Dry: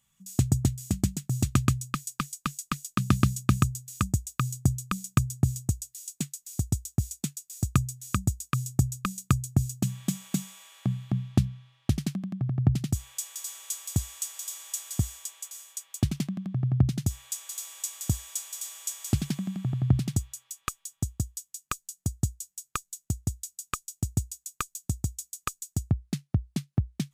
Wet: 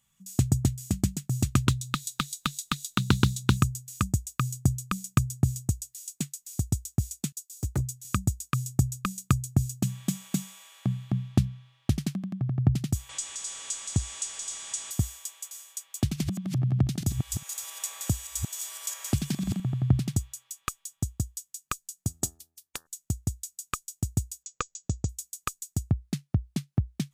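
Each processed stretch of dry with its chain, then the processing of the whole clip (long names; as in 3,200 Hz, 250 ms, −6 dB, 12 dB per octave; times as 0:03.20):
0:01.67–0:03.57: parametric band 3,800 Hz +13.5 dB 0.38 octaves + upward compression, threshold −29 dBFS + highs frequency-modulated by the lows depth 0.29 ms
0:07.32–0:08.05: gain into a clipping stage and back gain 23 dB + multiband upward and downward expander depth 100%
0:13.09–0:14.91: converter with a step at zero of −39 dBFS + Butterworth low-pass 9,000 Hz
0:15.95–0:19.60: delay that plays each chunk backwards 211 ms, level −8 dB + multiband upward and downward compressor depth 40%
0:22.07–0:22.85: ceiling on every frequency bin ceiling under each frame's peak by 22 dB + hum removal 81.67 Hz, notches 22 + expander for the loud parts, over −42 dBFS
0:24.43–0:25.09: Butterworth low-pass 7,600 Hz 96 dB per octave + parametric band 500 Hz +12.5 dB 0.5 octaves
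whole clip: no processing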